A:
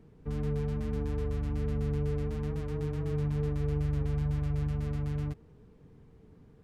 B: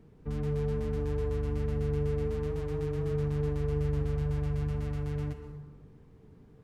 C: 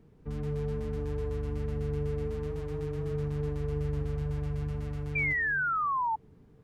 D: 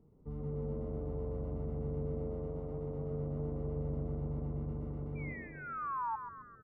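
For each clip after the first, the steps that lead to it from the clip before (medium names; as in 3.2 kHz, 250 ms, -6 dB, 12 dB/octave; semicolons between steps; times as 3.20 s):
plate-style reverb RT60 1.3 s, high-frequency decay 0.5×, pre-delay 105 ms, DRR 7 dB
painted sound fall, 5.15–6.16 s, 860–2400 Hz -27 dBFS; trim -2 dB
Savitzky-Golay filter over 65 samples; frequency-shifting echo 132 ms, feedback 52%, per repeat +89 Hz, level -9 dB; trim -6 dB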